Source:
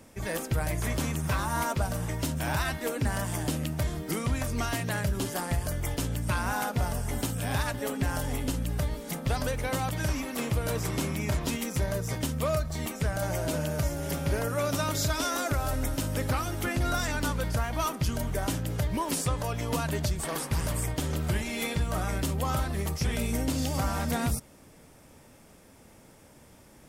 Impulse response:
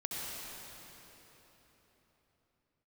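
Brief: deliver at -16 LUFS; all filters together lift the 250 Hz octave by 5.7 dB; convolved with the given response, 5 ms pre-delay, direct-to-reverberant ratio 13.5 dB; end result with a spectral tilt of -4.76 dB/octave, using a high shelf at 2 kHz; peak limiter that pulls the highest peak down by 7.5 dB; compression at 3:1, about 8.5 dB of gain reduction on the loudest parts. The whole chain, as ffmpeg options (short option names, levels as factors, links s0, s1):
-filter_complex "[0:a]equalizer=f=250:t=o:g=7,highshelf=f=2000:g=4,acompressor=threshold=0.0224:ratio=3,alimiter=level_in=1.5:limit=0.0631:level=0:latency=1,volume=0.668,asplit=2[s0][s1];[1:a]atrim=start_sample=2205,adelay=5[s2];[s1][s2]afir=irnorm=-1:irlink=0,volume=0.141[s3];[s0][s3]amix=inputs=2:normalize=0,volume=11.2"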